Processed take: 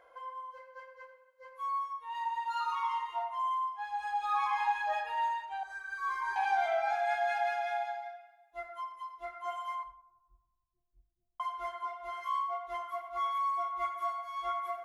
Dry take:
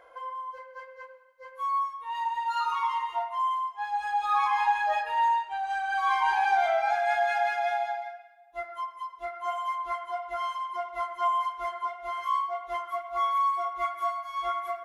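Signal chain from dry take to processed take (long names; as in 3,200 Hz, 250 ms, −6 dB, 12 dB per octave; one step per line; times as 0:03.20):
0:05.63–0:06.36: phaser with its sweep stopped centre 770 Hz, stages 6
0:09.83–0:11.40: inverse Chebyshev band-stop filter 930–8,900 Hz, stop band 80 dB
bucket-brigade delay 91 ms, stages 1,024, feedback 61%, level −21 dB
on a send at −11.5 dB: convolution reverb RT60 0.35 s, pre-delay 25 ms
on the sum: level −6 dB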